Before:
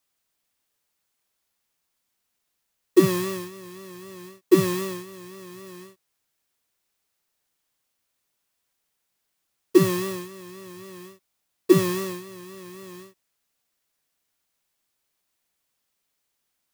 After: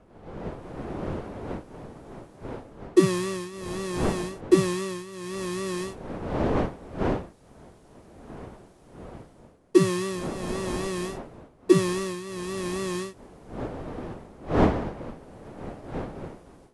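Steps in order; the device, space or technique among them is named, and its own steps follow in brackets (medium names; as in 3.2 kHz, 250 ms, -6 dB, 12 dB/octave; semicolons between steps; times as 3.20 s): smartphone video outdoors (wind noise 500 Hz -43 dBFS; level rider gain up to 16.5 dB; trim -4.5 dB; AAC 96 kbps 24 kHz)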